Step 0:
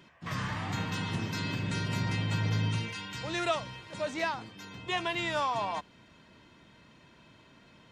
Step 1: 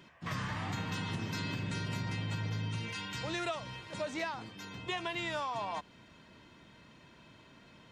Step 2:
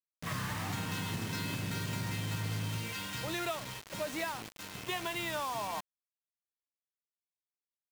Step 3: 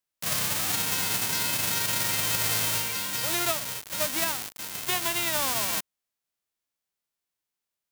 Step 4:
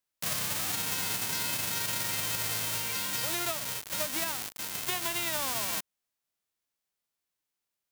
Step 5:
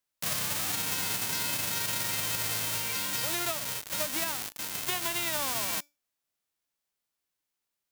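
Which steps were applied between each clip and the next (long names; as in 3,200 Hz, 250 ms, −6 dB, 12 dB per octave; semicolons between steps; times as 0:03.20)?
downward compressor, threshold −33 dBFS, peak gain reduction 9 dB
bit reduction 7 bits
spectral envelope flattened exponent 0.1; level +9 dB
downward compressor, threshold −28 dBFS, peak gain reduction 6.5 dB
tuned comb filter 290 Hz, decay 0.26 s, harmonics all, mix 30%; level +3.5 dB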